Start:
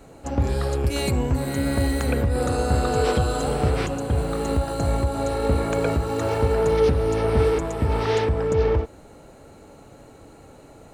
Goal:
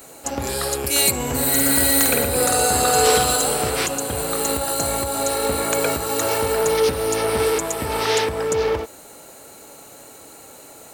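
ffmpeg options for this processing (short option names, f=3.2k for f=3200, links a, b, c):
-filter_complex "[0:a]asoftclip=type=tanh:threshold=-9dB,aemphasis=mode=production:type=riaa,asettb=1/sr,asplit=3[a][b][c];[a]atrim=end=1.154[d];[b]atrim=start=1.15:end=3.36,asetpts=PTS-STARTPTS,afade=t=in:d=0.004:c=qsin,afade=t=out:st=2.206:d=0.004:c=qsin,aecho=1:1:50|120|218|355.2|547.3:0.631|0.398|0.251|0.158|0.1,atrim=end_sample=97461[e];[c]atrim=start=3.356[f];[d][e]acrossfade=d=0.004:c1=hsin:c2=qsin[g];[g][f]acrossfade=d=0.004:c1=qsin:c2=hsin,volume=4.5dB"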